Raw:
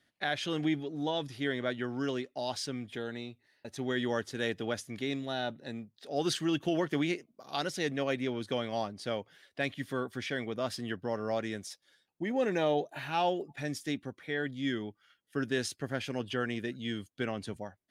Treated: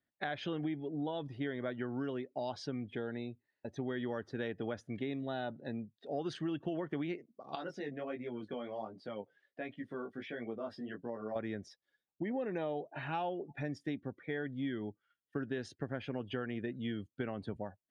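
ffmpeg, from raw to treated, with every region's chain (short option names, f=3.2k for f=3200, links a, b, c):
-filter_complex "[0:a]asettb=1/sr,asplit=3[a][b][c];[a]atrim=end=7.554[d];[b]atrim=start=7.55:end=11.36,asetpts=PTS-STARTPTS,afade=t=in:d=0.004:c=qsin,afade=t=out:st=3.806:d=0.004:c=qsin,highpass=180,acompressor=threshold=-37dB:ratio=2:attack=3.2:release=140:knee=1:detection=peak,flanger=delay=17:depth=3.8:speed=1.4[e];[c]atrim=start=11.356[f];[d][e]acrossfade=d=0.004:c1=hsin:c2=qsin[g];[g][f]acrossfade=d=0.004:c1=qsin:c2=hsin,lowpass=f=1.5k:p=1,afftdn=nr=15:nf=-55,acompressor=threshold=-36dB:ratio=6,volume=2dB"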